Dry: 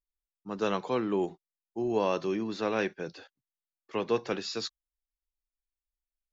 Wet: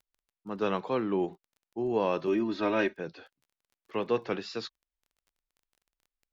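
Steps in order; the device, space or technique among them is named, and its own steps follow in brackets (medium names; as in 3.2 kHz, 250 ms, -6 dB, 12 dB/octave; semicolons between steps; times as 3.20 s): lo-fi chain (low-pass 3.7 kHz 12 dB/octave; wow and flutter; crackle 22 per s -51 dBFS); 2.27–2.97 s: comb 3.2 ms, depth 96%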